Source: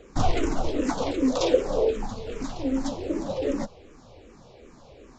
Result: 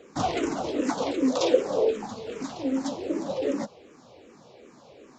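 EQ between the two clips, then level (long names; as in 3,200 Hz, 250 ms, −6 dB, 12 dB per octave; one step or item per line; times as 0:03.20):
high-pass filter 170 Hz 12 dB per octave
0.0 dB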